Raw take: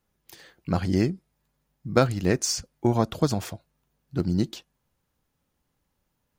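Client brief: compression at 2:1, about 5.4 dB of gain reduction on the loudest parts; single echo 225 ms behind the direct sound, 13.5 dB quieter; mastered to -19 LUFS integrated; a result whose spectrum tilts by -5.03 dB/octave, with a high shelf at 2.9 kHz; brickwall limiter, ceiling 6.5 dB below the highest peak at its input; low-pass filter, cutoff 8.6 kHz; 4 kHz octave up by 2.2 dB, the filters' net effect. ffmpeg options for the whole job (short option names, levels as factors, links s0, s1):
-af "lowpass=8600,highshelf=f=2900:g=-4,equalizer=f=4000:t=o:g=7,acompressor=threshold=0.0631:ratio=2,alimiter=limit=0.126:level=0:latency=1,aecho=1:1:225:0.211,volume=4.22"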